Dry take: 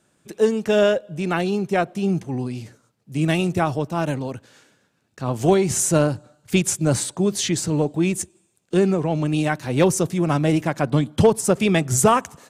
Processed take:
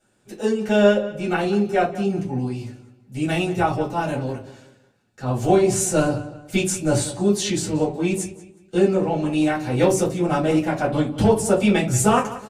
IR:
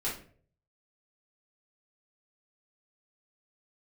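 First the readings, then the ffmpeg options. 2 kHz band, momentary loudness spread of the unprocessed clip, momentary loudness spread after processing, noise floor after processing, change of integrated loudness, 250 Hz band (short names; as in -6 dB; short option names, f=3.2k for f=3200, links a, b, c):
+0.5 dB, 10 LU, 10 LU, -57 dBFS, 0.0 dB, +0.5 dB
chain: -filter_complex "[0:a]asplit=2[a][b];[b]adelay=183,lowpass=f=3.8k:p=1,volume=-15dB,asplit=2[c][d];[d]adelay=183,lowpass=f=3.8k:p=1,volume=0.36,asplit=2[e][f];[f]adelay=183,lowpass=f=3.8k:p=1,volume=0.36[g];[a][c][e][g]amix=inputs=4:normalize=0[h];[1:a]atrim=start_sample=2205,asetrate=83790,aresample=44100[i];[h][i]afir=irnorm=-1:irlink=0"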